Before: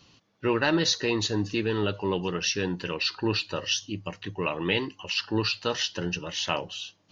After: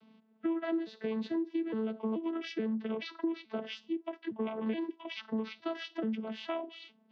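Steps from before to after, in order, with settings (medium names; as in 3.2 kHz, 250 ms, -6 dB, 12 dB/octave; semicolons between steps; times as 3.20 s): vocoder on a broken chord bare fifth, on A3, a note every 430 ms; compression 6:1, threshold -34 dBFS, peak gain reduction 17 dB; distance through air 280 m; trim +3.5 dB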